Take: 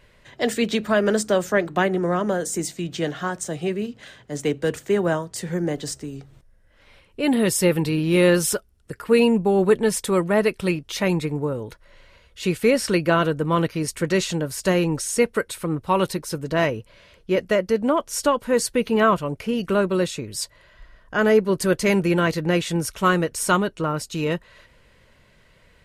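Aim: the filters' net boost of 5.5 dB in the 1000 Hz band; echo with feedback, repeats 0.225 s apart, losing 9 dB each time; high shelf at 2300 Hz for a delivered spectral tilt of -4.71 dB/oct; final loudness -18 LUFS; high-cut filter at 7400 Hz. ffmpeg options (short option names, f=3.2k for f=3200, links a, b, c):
-af "lowpass=7.4k,equalizer=f=1k:t=o:g=6,highshelf=f=2.3k:g=3.5,aecho=1:1:225|450|675|900:0.355|0.124|0.0435|0.0152,volume=2dB"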